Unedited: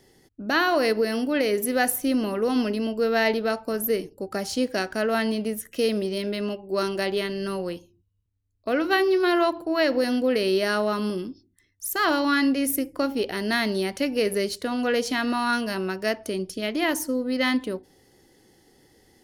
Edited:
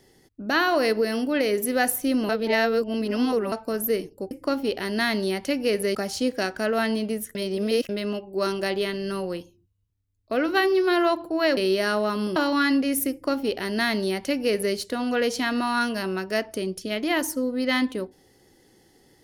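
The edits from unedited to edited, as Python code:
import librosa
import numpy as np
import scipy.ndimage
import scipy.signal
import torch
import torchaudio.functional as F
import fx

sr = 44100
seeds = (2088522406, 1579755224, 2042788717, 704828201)

y = fx.edit(x, sr, fx.reverse_span(start_s=2.29, length_s=1.23),
    fx.reverse_span(start_s=5.71, length_s=0.54),
    fx.cut(start_s=9.93, length_s=0.47),
    fx.cut(start_s=11.19, length_s=0.89),
    fx.duplicate(start_s=12.83, length_s=1.64, to_s=4.31), tone=tone)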